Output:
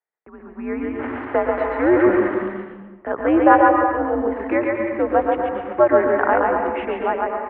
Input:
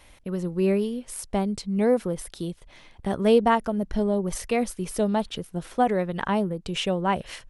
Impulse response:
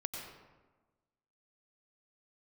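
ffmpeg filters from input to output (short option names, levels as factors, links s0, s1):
-filter_complex "[0:a]asettb=1/sr,asplit=3[s0][s1][s2];[s0]atrim=end=0.994[s3];[s1]atrim=start=0.99:end=2.32,asetpts=PTS-STARTPTS,afade=t=in:d=0.004:c=qsin,afade=t=out:st=1.326:d=0.004:c=qsin,aeval=exprs='val(0)+0.5*0.0447*sgn(val(0))':c=same[s4];[s2]atrim=start=2.316[s5];[s3][s4]acrossfade=d=0.004:c1=hsin:c2=qsin[s6];[s6][s5]acrossfade=d=0.004:c1=qsin:c2=hsin,aemphasis=mode=reproduction:type=75fm,agate=range=0.0251:threshold=0.00794:ratio=16:detection=peak,equalizer=f=330:w=0.71:g=-13.5,bandreject=f=60:t=h:w=6,bandreject=f=120:t=h:w=6,bandreject=f=180:t=h:w=6,bandreject=f=240:t=h:w=6,acrossover=split=290[s7][s8];[s8]dynaudnorm=f=160:g=9:m=3.98[s9];[s7][s9]amix=inputs=2:normalize=0,asettb=1/sr,asplit=3[s10][s11][s12];[s10]atrim=end=5.174[s13];[s11]atrim=start=5.17:end=6.26,asetpts=PTS-STARTPTS,afade=t=in:d=0.004:c=qsin,afade=t=out:st=1.086:d=0.004:c=qsin,acrusher=bits=6:dc=4:mix=0:aa=0.000001[s14];[s12]atrim=start=6.256[s15];[s13][s14]acrossfade=d=0.004:c1=hsin:c2=qsin[s16];[s16][s15]acrossfade=d=0.004:c1=qsin:c2=hsin,aecho=1:1:118:0.398,asplit=2[s17][s18];[1:a]atrim=start_sample=2205,adelay=138[s19];[s18][s19]afir=irnorm=-1:irlink=0,volume=0.891[s20];[s17][s20]amix=inputs=2:normalize=0,highpass=f=330:t=q:w=0.5412,highpass=f=330:t=q:w=1.307,lowpass=f=2100:t=q:w=0.5176,lowpass=f=2100:t=q:w=0.7071,lowpass=f=2100:t=q:w=1.932,afreqshift=-140,volume=1.26"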